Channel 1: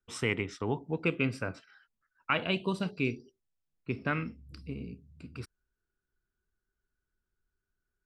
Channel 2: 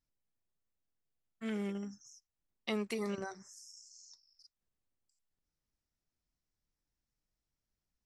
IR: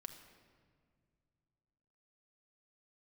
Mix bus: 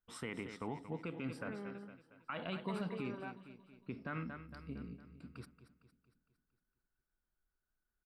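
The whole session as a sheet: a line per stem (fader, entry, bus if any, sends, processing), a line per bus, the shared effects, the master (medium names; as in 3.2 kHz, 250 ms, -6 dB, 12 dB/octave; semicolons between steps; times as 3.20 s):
-3.5 dB, 0.00 s, no send, echo send -13 dB, fifteen-band graphic EQ 100 Hz -12 dB, 400 Hz -6 dB, 2.5 kHz -8 dB, 6.3 kHz -12 dB
-2.0 dB, 0.00 s, no send, no echo send, steep low-pass 1.8 kHz; bass shelf 360 Hz -11.5 dB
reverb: none
echo: feedback delay 229 ms, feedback 51%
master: peak limiter -30.5 dBFS, peak gain reduction 11 dB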